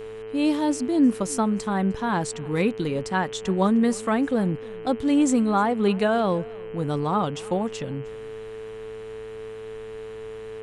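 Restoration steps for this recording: de-hum 109.1 Hz, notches 29; notch 440 Hz, Q 30; inverse comb 0.307 s -23.5 dB

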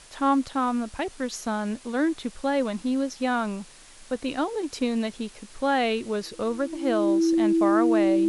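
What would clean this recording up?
notch 330 Hz, Q 30; denoiser 22 dB, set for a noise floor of -48 dBFS

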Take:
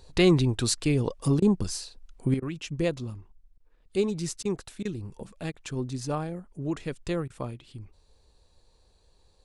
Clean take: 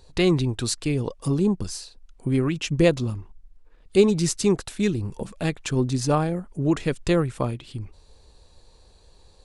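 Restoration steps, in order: interpolate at 1.4/2.4/3.58/4.43/4.83/5.52/7.28, 20 ms; gain correction +9 dB, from 2.34

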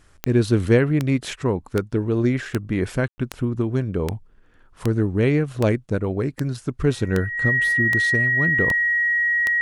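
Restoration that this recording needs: de-click; notch 1900 Hz, Q 30; room tone fill 3.08–3.18

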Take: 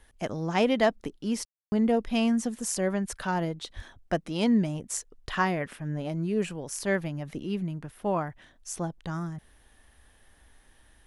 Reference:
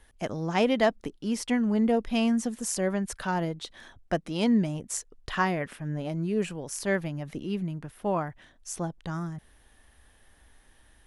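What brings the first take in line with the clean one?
de-plosive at 3.75; room tone fill 1.45–1.72

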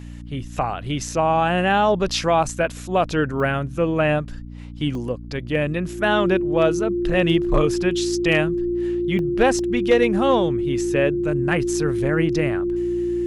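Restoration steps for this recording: clip repair -8 dBFS; de-hum 58.9 Hz, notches 5; notch 350 Hz, Q 30; interpolate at 3.4/4.95/9.19/9.59, 1.1 ms

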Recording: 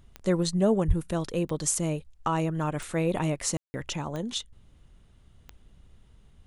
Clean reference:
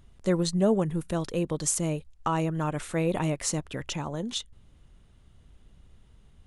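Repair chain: de-click; 0.87–0.99 HPF 140 Hz 24 dB/oct; room tone fill 3.57–3.74

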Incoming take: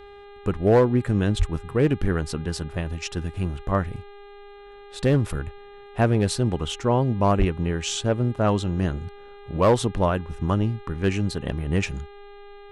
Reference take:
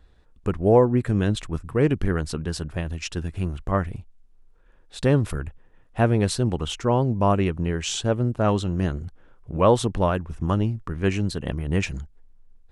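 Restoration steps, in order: clip repair -11 dBFS; de-hum 405.2 Hz, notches 10; 1.38–1.5 HPF 140 Hz 24 dB/oct; 7.38–7.5 HPF 140 Hz 24 dB/oct

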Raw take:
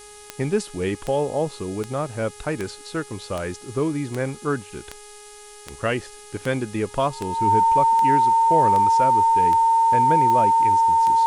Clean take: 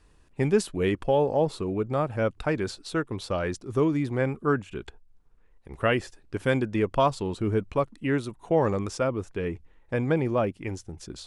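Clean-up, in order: de-click; de-hum 416.1 Hz, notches 29; notch 910 Hz, Q 30; noise print and reduce 13 dB

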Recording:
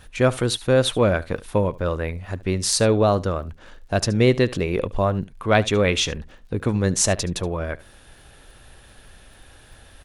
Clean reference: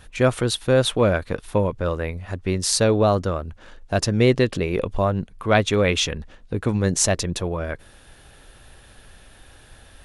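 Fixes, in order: clip repair -4.5 dBFS; de-click; inverse comb 73 ms -20 dB

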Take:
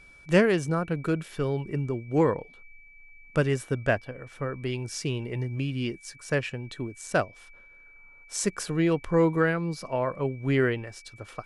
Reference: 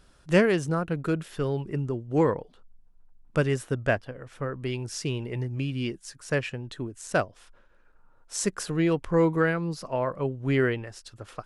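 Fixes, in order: notch 2300 Hz, Q 30

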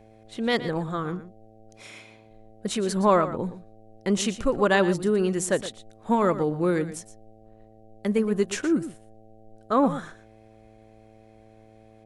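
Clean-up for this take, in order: de-hum 109.9 Hz, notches 7; inverse comb 0.118 s -13.5 dB

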